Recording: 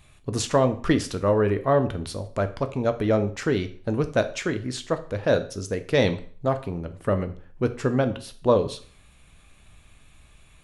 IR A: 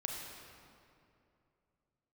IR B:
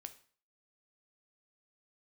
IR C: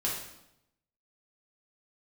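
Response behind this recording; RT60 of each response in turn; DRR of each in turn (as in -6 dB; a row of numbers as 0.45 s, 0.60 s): B; 2.6 s, 0.45 s, 0.85 s; 0.0 dB, 8.5 dB, -6.0 dB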